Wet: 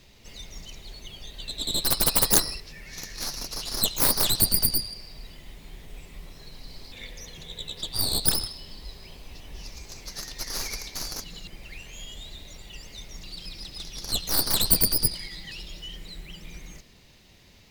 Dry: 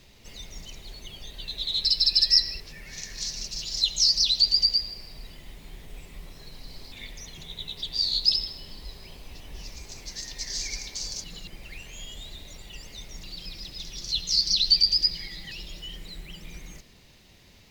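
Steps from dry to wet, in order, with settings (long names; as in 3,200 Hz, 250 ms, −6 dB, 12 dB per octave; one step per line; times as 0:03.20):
stylus tracing distortion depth 0.29 ms
0:06.92–0:07.89: hollow resonant body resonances 500/1,700 Hz, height 9 dB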